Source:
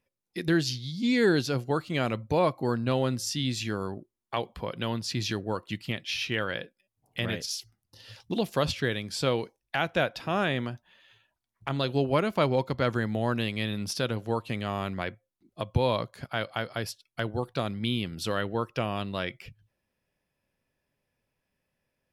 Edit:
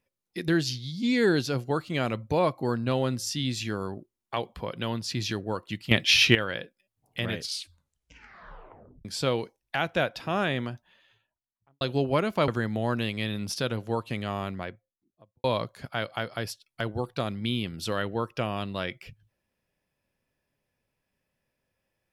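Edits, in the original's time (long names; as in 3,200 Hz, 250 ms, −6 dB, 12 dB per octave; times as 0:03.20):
0:05.91–0:06.35: clip gain +12 dB
0:07.34: tape stop 1.71 s
0:10.74–0:11.81: fade out and dull
0:12.48–0:12.87: remove
0:14.64–0:15.83: fade out and dull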